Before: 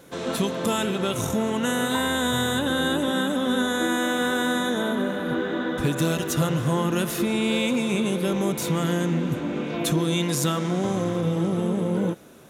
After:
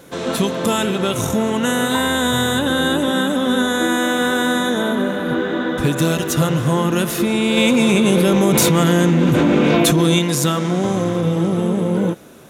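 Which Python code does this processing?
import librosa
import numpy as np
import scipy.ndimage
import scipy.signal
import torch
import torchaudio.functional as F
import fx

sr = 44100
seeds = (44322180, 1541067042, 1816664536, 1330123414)

y = fx.env_flatten(x, sr, amount_pct=100, at=(7.57, 10.19))
y = F.gain(torch.from_numpy(y), 6.0).numpy()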